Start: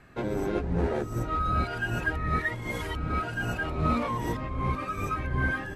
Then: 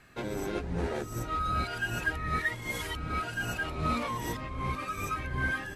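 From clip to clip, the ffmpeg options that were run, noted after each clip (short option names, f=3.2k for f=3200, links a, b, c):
-af "highshelf=f=2.1k:g=11.5,volume=-5.5dB"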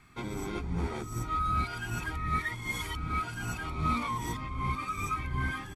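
-af "aecho=1:1:0.9:0.64,volume=-2.5dB"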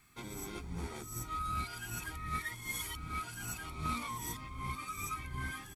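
-af "aeval=exprs='0.141*(cos(1*acos(clip(val(0)/0.141,-1,1)))-cos(1*PI/2))+0.0126*(cos(3*acos(clip(val(0)/0.141,-1,1)))-cos(3*PI/2))':c=same,aemphasis=mode=production:type=75kf,volume=-6.5dB"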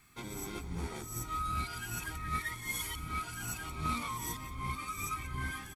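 -af "aecho=1:1:179:0.178,volume=2dB"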